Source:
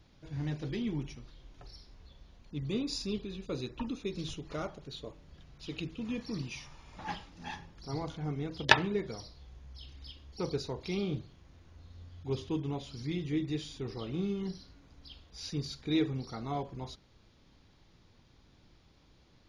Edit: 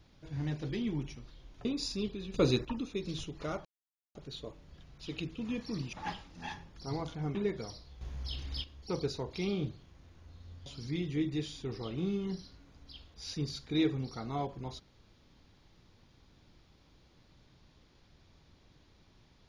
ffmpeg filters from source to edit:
-filter_complex "[0:a]asplit=10[s0][s1][s2][s3][s4][s5][s6][s7][s8][s9];[s0]atrim=end=1.652[s10];[s1]atrim=start=2.748:end=3.442[s11];[s2]atrim=start=3.438:end=3.752,asetpts=PTS-STARTPTS,volume=3.16[s12];[s3]atrim=start=3.748:end=4.75,asetpts=PTS-STARTPTS,afade=t=out:st=0.998:d=0.004:c=hsin,apad=pad_dur=0.5[s13];[s4]atrim=start=4.75:end=6.532,asetpts=PTS-STARTPTS,afade=t=in:d=0.004:c=hsin[s14];[s5]atrim=start=6.948:end=8.372[s15];[s6]atrim=start=8.848:end=9.512[s16];[s7]atrim=start=9.508:end=10.142,asetpts=PTS-STARTPTS,volume=2.99[s17];[s8]atrim=start=10.138:end=12.162[s18];[s9]atrim=start=12.818[s19];[s10][s11]acrossfade=d=0.004:c1=hsin:c2=hsin[s20];[s20][s12]acrossfade=d=0.004:c1=hsin:c2=hsin[s21];[s13][s14]concat=n=2:v=0:a=1[s22];[s21][s22]acrossfade=d=0.004:c1=hsin:c2=hsin[s23];[s23][s15]acrossfade=d=0.004:c1=hsin:c2=hsin[s24];[s24][s16]acrossfade=d=0.004:c1=hsin:c2=hsin[s25];[s25][s17]acrossfade=d=0.004:c1=hsin:c2=hsin[s26];[s26][s18]acrossfade=d=0.004:c1=hsin:c2=hsin[s27];[s27][s19]acrossfade=d=0.004:c1=hsin:c2=hsin"

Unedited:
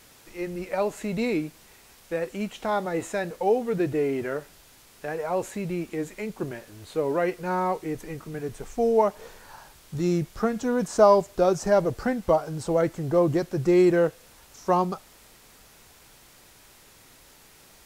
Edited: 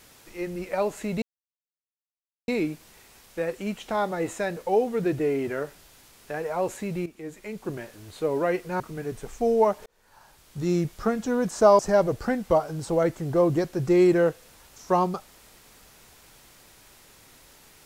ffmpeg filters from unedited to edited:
-filter_complex "[0:a]asplit=6[s0][s1][s2][s3][s4][s5];[s0]atrim=end=1.22,asetpts=PTS-STARTPTS,afade=t=out:st=1.216:d=0.004:c=hsin,apad=pad_dur=1.26[s6];[s1]atrim=start=1.22:end=5.8,asetpts=PTS-STARTPTS,afade=t=in:d=0.004:c=hsin,afade=t=out:st=4.576:d=0.004:c=hsin:silence=0.223872[s7];[s2]atrim=start=5.8:end=7.542,asetpts=PTS-STARTPTS,afade=t=in:d=0.75:silence=0.223872[s8];[s3]atrim=start=8.168:end=9.23,asetpts=PTS-STARTPTS,afade=t=out:st=1.058:d=0.004:c=hsin[s9];[s4]atrim=start=9.23:end=11.162,asetpts=PTS-STARTPTS,afade=t=in:d=0.86[s10];[s5]atrim=start=11.568[s11];[s6][s7][s8]concat=n=3:v=0:a=1[s12];[s9][s10]concat=n=2:v=0:a=1[s13];[s12][s13]acrossfade=d=0.004:c1=hsin:c2=hsin[s14];[s14][s11]acrossfade=d=0.004:c1=hsin:c2=hsin"

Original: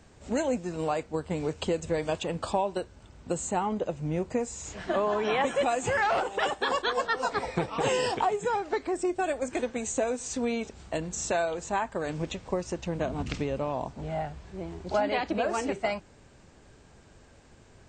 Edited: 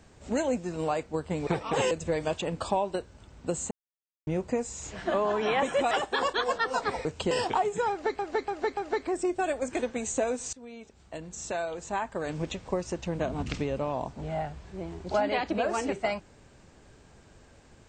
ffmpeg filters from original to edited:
-filter_complex "[0:a]asplit=12[s0][s1][s2][s3][s4][s5][s6][s7][s8][s9][s10][s11];[s0]atrim=end=1.472[s12];[s1]atrim=start=7.538:end=7.982[s13];[s2]atrim=start=1.728:end=3.53,asetpts=PTS-STARTPTS,afade=t=out:st=1.798:d=0.004:c=hsin[s14];[s3]atrim=start=3.53:end=4.09,asetpts=PTS-STARTPTS,volume=0[s15];[s4]atrim=start=4.09:end=5.732,asetpts=PTS-STARTPTS,afade=t=in:d=0.004:c=hsin[s16];[s5]atrim=start=6.398:end=7.542[s17];[s6]atrim=start=1.468:end=1.732[s18];[s7]atrim=start=7.978:end=8.862[s19];[s8]atrim=start=8.568:end=8.862[s20];[s9]atrim=start=8.568:end=8.862[s21];[s10]atrim=start=8.568:end=10.33,asetpts=PTS-STARTPTS,afade=t=out:st=1.758:d=0.004:c=hsin:silence=0.0891251[s22];[s11]atrim=start=10.33,asetpts=PTS-STARTPTS,afade=t=in:d=1.93:silence=0.0891251[s23];[s12][s13]acrossfade=d=0.004:c1=hsin:c2=hsin[s24];[s14][s15][s16]concat=n=3:v=0:a=1[s25];[s24][s25]acrossfade=d=0.004:c1=hsin:c2=hsin[s26];[s26][s17]acrossfade=d=0.004:c1=hsin:c2=hsin[s27];[s27][s18]acrossfade=d=0.004:c1=hsin:c2=hsin[s28];[s28][s19]acrossfade=d=0.004:c1=hsin:c2=hsin[s29];[s29][s20]acrossfade=d=0.004:c1=hsin:c2=hsin[s30];[s30][s21]acrossfade=d=0.004:c1=hsin:c2=hsin[s31];[s22][s23]concat=n=2:v=0:a=1[s32];[s31][s32]acrossfade=d=0.004:c1=hsin:c2=hsin"

